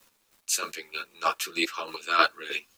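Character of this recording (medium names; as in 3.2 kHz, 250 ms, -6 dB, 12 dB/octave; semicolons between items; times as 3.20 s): a quantiser's noise floor 10-bit, dither none; chopped level 3.2 Hz, depth 65%, duty 25%; a shimmering, thickened sound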